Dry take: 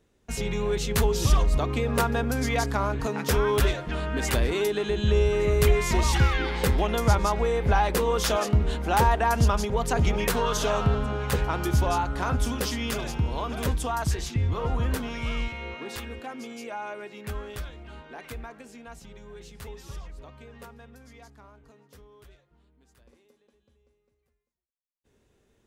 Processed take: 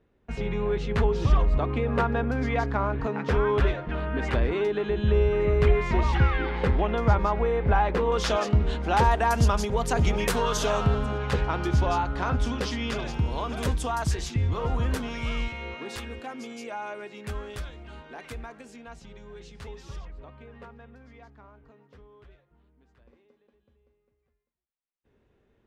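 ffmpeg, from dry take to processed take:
ffmpeg -i in.wav -af "asetnsamples=nb_out_samples=441:pad=0,asendcmd='8.12 lowpass f 5200;9.04 lowpass f 11000;11.18 lowpass f 4700;13.14 lowpass f 9600;18.76 lowpass f 5800;20.05 lowpass f 2600',lowpass=2300" out.wav

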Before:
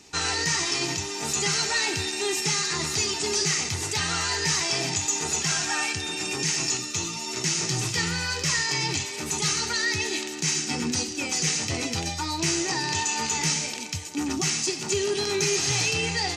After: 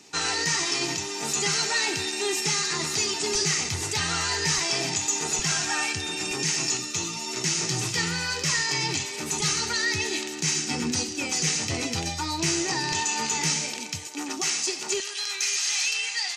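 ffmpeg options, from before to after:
ffmpeg -i in.wav -af "asetnsamples=nb_out_samples=441:pad=0,asendcmd='3.35 highpass f 50;4.58 highpass f 130;5.39 highpass f 52;6.31 highpass f 110;9.4 highpass f 53;12.92 highpass f 130;14.07 highpass f 400;15 highpass f 1500',highpass=140" out.wav

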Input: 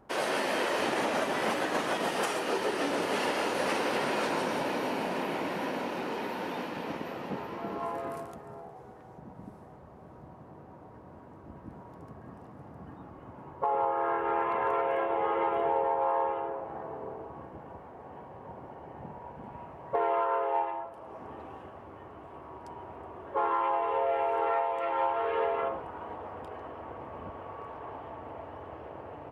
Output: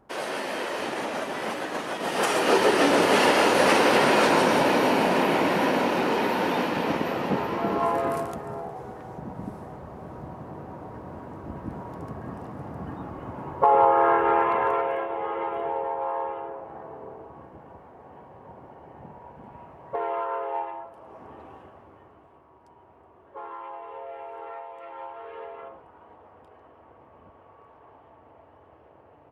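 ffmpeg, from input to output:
ffmpeg -i in.wav -af "volume=10.5dB,afade=type=in:start_time=1.99:duration=0.53:silence=0.266073,afade=type=out:start_time=13.95:duration=1.13:silence=0.266073,afade=type=out:start_time=21.51:duration=0.95:silence=0.334965" out.wav

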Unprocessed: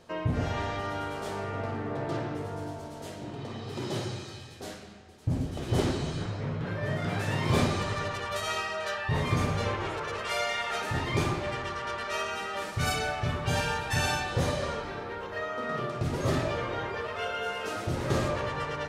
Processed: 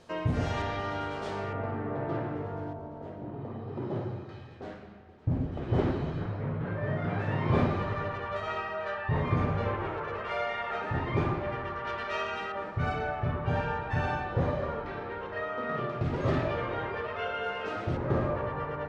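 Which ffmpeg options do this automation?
ffmpeg -i in.wav -af "asetnsamples=nb_out_samples=441:pad=0,asendcmd='0.62 lowpass f 4800;1.53 lowpass f 1900;2.73 lowpass f 1100;4.29 lowpass f 1800;11.85 lowpass f 3100;12.52 lowpass f 1500;14.86 lowpass f 2700;17.97 lowpass f 1400',lowpass=10000" out.wav

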